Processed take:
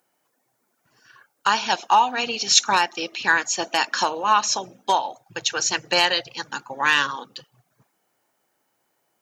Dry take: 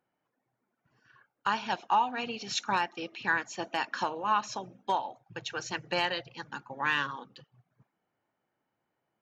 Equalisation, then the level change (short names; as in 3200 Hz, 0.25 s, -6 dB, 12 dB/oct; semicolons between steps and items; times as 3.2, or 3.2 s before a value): tone controls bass -8 dB, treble +13 dB; +9.0 dB